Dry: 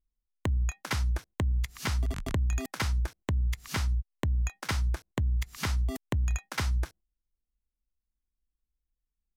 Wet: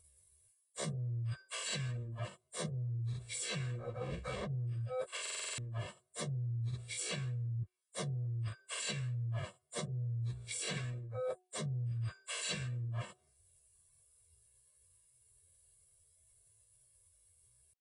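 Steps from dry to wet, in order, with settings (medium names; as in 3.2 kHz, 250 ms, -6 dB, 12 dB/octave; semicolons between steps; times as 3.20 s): knee-point frequency compression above 3.6 kHz 4:1; peak limiter -29 dBFS, peak gain reduction 10.5 dB; low-pass that closes with the level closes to 590 Hz, closed at -32 dBFS; pitch shift +11.5 st; high-pass 200 Hz 6 dB/octave; plain phase-vocoder stretch 1.9×; treble shelf 3.4 kHz +10 dB; comb 1.8 ms, depth 97%; de-hum 366.2 Hz, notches 2; reverse; compression 5:1, threshold -53 dBFS, peak gain reduction 17 dB; reverse; buffer glitch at 5.21 s, samples 2048, times 7; trim +14.5 dB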